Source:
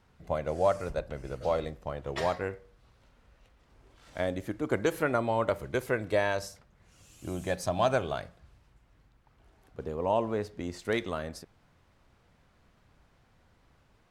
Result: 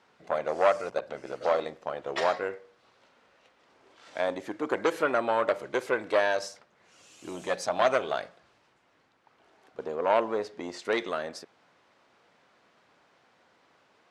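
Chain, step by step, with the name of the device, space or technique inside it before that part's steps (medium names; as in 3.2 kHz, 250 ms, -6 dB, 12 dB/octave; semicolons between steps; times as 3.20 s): public-address speaker with an overloaded transformer (transformer saturation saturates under 930 Hz; band-pass 350–6700 Hz); trim +5.5 dB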